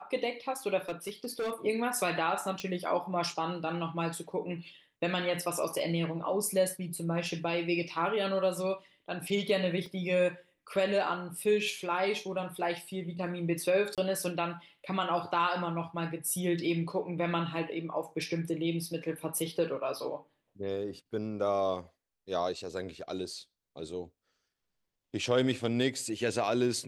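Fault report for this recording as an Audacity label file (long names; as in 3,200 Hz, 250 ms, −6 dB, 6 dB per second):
0.890000	1.540000	clipping −30 dBFS
2.600000	2.600000	click −21 dBFS
9.860000	9.860000	drop-out 2.2 ms
13.950000	13.980000	drop-out 27 ms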